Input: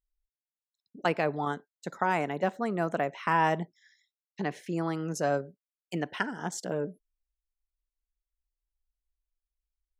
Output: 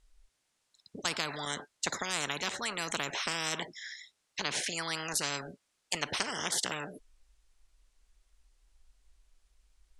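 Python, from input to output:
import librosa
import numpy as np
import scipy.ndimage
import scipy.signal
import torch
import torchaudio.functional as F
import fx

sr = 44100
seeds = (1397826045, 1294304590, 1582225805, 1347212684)

y = scipy.signal.sosfilt(scipy.signal.butter(4, 9700.0, 'lowpass', fs=sr, output='sos'), x)
y = fx.spectral_comp(y, sr, ratio=10.0)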